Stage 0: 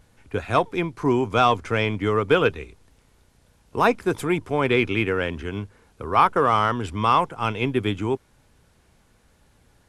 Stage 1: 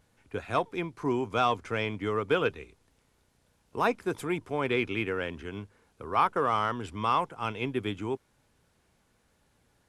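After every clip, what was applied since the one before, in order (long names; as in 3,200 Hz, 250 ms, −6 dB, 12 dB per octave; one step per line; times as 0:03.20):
low-shelf EQ 77 Hz −8.5 dB
level −7.5 dB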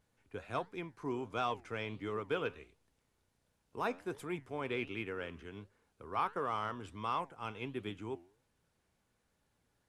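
flanger 1.4 Hz, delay 4.5 ms, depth 7.5 ms, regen +86%
level −5 dB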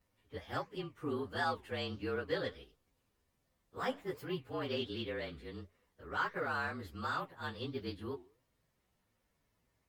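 partials spread apart or drawn together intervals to 112%
level +3 dB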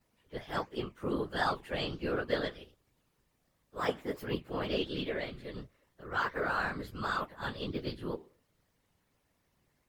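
random phases in short frames
level +4 dB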